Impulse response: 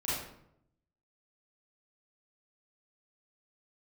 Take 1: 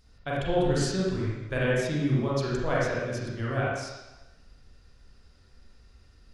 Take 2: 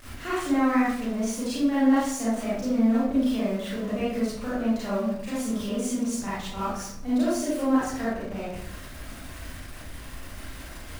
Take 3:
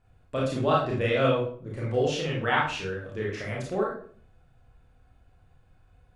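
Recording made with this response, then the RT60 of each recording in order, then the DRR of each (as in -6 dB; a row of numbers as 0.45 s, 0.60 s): 2; 1.1 s, 0.75 s, 0.50 s; -6.5 dB, -10.0 dB, -5.0 dB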